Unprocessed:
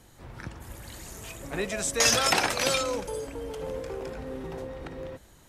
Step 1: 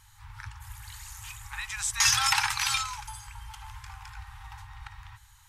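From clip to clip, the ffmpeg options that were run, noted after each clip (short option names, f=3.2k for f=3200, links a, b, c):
-af "afftfilt=real='re*(1-between(b*sr/4096,120,780))':imag='im*(1-between(b*sr/4096,120,780))':win_size=4096:overlap=0.75"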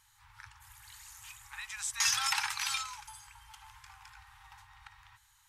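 -af "lowshelf=f=400:g=-12,volume=-6dB"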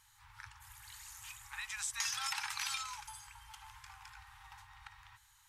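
-af "acompressor=threshold=-35dB:ratio=5"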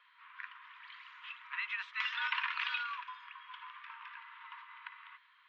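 -af "highpass=f=350:t=q:w=0.5412,highpass=f=350:t=q:w=1.307,lowpass=f=3.1k:t=q:w=0.5176,lowpass=f=3.1k:t=q:w=0.7071,lowpass=f=3.1k:t=q:w=1.932,afreqshift=140,volume=6dB"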